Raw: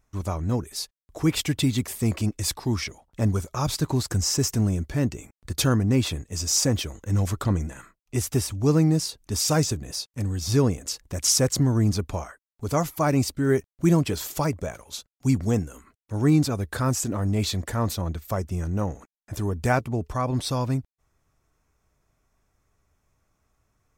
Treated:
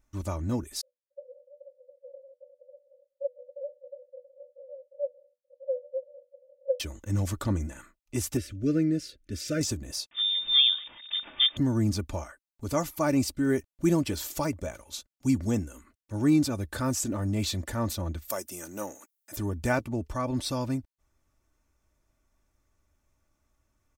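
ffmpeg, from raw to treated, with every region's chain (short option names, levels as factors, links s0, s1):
-filter_complex "[0:a]asettb=1/sr,asplit=3[s0][s1][s2];[s0]atrim=end=0.814[s3];[s1]atrim=start=0.81:end=6.8,asetpts=PTS-STARTPTS,afade=t=in:d=0.004:c=qsin,afade=t=out:st=5.986:d=0.004:c=qsin,asuperpass=centerf=540:order=20:qfactor=5.9,acontrast=75[s4];[s2]atrim=start=6.796[s5];[s3][s4]acrossfade=d=0.004:c1=hsin:c2=qsin[s6];[s6][s5]acrossfade=d=0.004:c1=qsin:c2=hsin,asettb=1/sr,asplit=3[s7][s8][s9];[s7]atrim=end=8.374[s10];[s8]atrim=start=8.37:end=9.61,asetpts=PTS-STARTPTS,afade=t=in:d=0.004:c=qsin,afade=t=out:st=1.236:d=0.004:c=qsin,asuperstop=centerf=900:order=8:qfactor=1.2,bass=f=250:g=-3,treble=f=4000:g=-14[s11];[s9]atrim=start=9.606[s12];[s10][s11]acrossfade=d=0.004:c1=hsin:c2=qsin[s13];[s13][s12]acrossfade=d=0.004:c1=qsin:c2=hsin,asettb=1/sr,asplit=3[s14][s15][s16];[s14]atrim=end=10.114[s17];[s15]atrim=start=10.11:end=11.57,asetpts=PTS-STARTPTS,afade=t=in:d=0.004:c=qsin,afade=t=out:st=1.456:d=0.004:c=qsin,aeval=exprs='val(0)+0.5*0.0158*sgn(val(0))':c=same,lowpass=f=3100:t=q:w=0.5098,lowpass=f=3100:t=q:w=0.6013,lowpass=f=3100:t=q:w=0.9,lowpass=f=3100:t=q:w=2.563,afreqshift=-3700[s18];[s16]atrim=start=11.566[s19];[s17][s18]acrossfade=d=0.004:c1=hsin:c2=qsin[s20];[s20][s19]acrossfade=d=0.004:c1=qsin:c2=hsin,asettb=1/sr,asplit=3[s21][s22][s23];[s21]atrim=end=18.304[s24];[s22]atrim=start=18.3:end=19.36,asetpts=PTS-STARTPTS,afade=t=in:d=0.004:c=qsin,afade=t=out:st=1.056:d=0.004:c=qsin,highpass=330,aemphasis=mode=production:type=75fm[s25];[s23]atrim=start=19.356[s26];[s24][s25]acrossfade=d=0.004:c1=hsin:c2=qsin[s27];[s27][s26]acrossfade=d=0.004:c1=qsin:c2=hsin,equalizer=f=1000:t=o:w=1.8:g=-2.5,aecho=1:1:3.4:0.47,volume=0.668"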